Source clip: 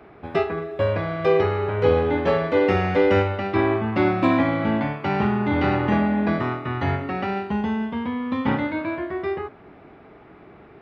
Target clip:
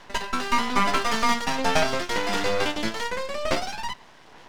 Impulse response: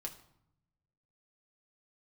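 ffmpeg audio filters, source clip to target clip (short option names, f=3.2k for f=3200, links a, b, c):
-af "aphaser=in_gain=1:out_gain=1:delay=2.5:decay=0.28:speed=0.47:type=sinusoidal,aeval=exprs='max(val(0),0)':c=same,asetrate=106281,aresample=44100"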